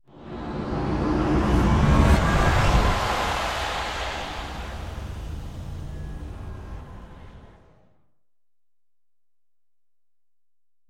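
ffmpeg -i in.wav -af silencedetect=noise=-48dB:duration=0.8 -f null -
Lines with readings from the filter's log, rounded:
silence_start: 7.87
silence_end: 10.89 | silence_duration: 3.02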